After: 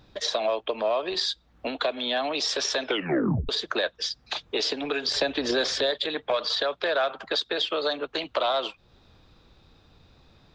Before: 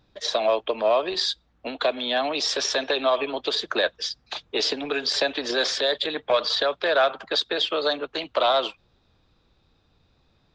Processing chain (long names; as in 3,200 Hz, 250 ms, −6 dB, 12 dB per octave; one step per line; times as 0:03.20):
downward compressor 2 to 1, threshold −40 dBFS, peak gain reduction 13 dB
0:02.83: tape stop 0.66 s
0:05.08–0:05.91: low-shelf EQ 260 Hz +11.5 dB
level +7.5 dB